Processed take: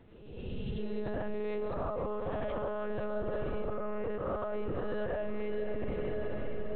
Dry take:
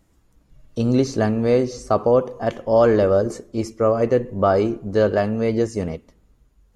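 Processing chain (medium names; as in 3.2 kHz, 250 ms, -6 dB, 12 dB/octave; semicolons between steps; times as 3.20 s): reverse spectral sustain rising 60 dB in 1.07 s; hum notches 60/120/180/240/300 Hz; on a send at -10 dB: reverberation RT60 2.4 s, pre-delay 68 ms; on the sum: monotone LPC vocoder at 8 kHz 210 Hz; echo that smears into a reverb 545 ms, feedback 48%, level -13 dB; compression, threshold -26 dBFS, peak gain reduction 16.5 dB; peak limiter -26.5 dBFS, peak gain reduction 10.5 dB; spectral replace 0.43–0.96 s, 260–2700 Hz both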